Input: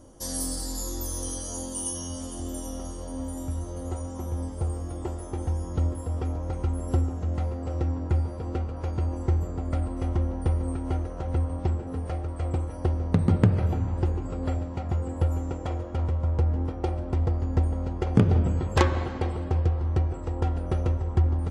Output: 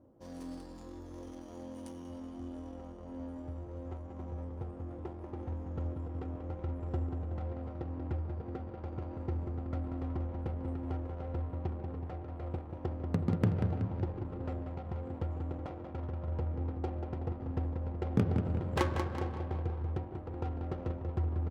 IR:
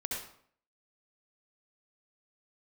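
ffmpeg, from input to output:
-af "aecho=1:1:187|374|561|748|935|1122|1309:0.473|0.251|0.133|0.0704|0.0373|0.0198|0.0105,adynamicsmooth=sensitivity=5:basefreq=830,highpass=91,volume=-8.5dB"

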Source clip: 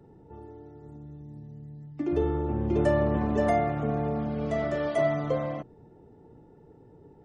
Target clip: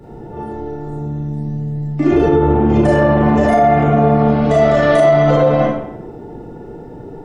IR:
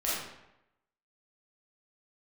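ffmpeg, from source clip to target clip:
-filter_complex "[0:a]asplit=3[a][b][c];[a]afade=t=out:st=2.18:d=0.02[d];[b]flanger=delay=1:depth=7.5:regen=-76:speed=1.1:shape=sinusoidal,afade=t=in:st=2.18:d=0.02,afade=t=out:st=4.49:d=0.02[e];[c]afade=t=in:st=4.49:d=0.02[f];[d][e][f]amix=inputs=3:normalize=0[g];[1:a]atrim=start_sample=2205,asetrate=48510,aresample=44100[h];[g][h]afir=irnorm=-1:irlink=0,alimiter=level_in=18.5dB:limit=-1dB:release=50:level=0:latency=1,volume=-3dB"

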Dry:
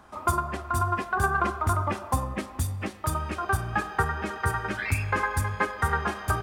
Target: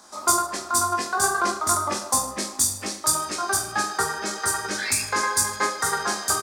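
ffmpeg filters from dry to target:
-filter_complex "[0:a]aexciter=amount=8.4:drive=7.6:freq=4.2k,acrossover=split=210 7600:gain=0.112 1 0.141[a][b][c];[a][b][c]amix=inputs=3:normalize=0,aecho=1:1:20|44|72.8|107.4|148.8:0.631|0.398|0.251|0.158|0.1"

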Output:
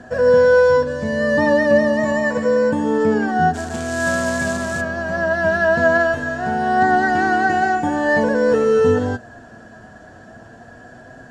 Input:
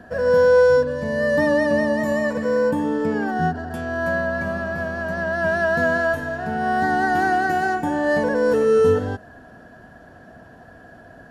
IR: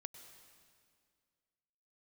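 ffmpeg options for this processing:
-filter_complex "[0:a]acrossover=split=4400[a][b];[b]acompressor=threshold=-56dB:ratio=4:attack=1:release=60[c];[a][c]amix=inputs=2:normalize=0,flanger=delay=7.8:depth=1.8:regen=53:speed=0.45:shape=triangular,asplit=3[d][e][f];[d]afade=t=out:st=3.53:d=0.02[g];[e]acrusher=bits=3:mode=log:mix=0:aa=0.000001,afade=t=in:st=3.53:d=0.02,afade=t=out:st=4.8:d=0.02[h];[f]afade=t=in:st=4.8:d=0.02[i];[g][h][i]amix=inputs=3:normalize=0,lowpass=f=7.5k:t=q:w=2.9,volume=7.5dB"

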